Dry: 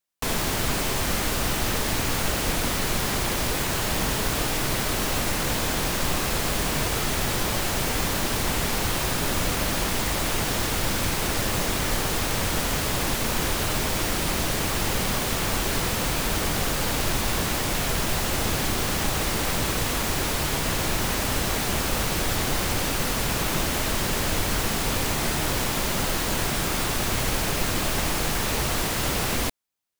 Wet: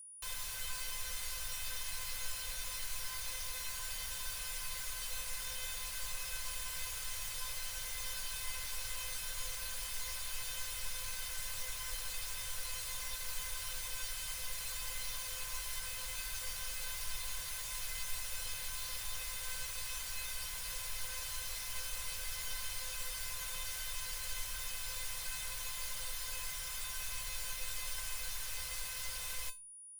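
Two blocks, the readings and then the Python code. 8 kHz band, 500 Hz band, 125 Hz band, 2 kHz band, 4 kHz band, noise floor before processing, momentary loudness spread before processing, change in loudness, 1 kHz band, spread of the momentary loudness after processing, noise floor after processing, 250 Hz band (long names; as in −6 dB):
−12.0 dB, −28.5 dB, −26.0 dB, −16.5 dB, −14.0 dB, −26 dBFS, 0 LU, −15.0 dB, −22.5 dB, 0 LU, −43 dBFS, −39.0 dB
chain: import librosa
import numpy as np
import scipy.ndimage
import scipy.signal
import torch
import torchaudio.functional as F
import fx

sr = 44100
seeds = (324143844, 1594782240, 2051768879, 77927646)

y = fx.tone_stack(x, sr, knobs='10-0-10')
y = y + 10.0 ** (-36.0 / 20.0) * np.sin(2.0 * np.pi * 9700.0 * np.arange(len(y)) / sr)
y = fx.comb_fb(y, sr, f0_hz=510.0, decay_s=0.22, harmonics='all', damping=0.0, mix_pct=90)
y = F.gain(torch.from_numpy(y), 1.0).numpy()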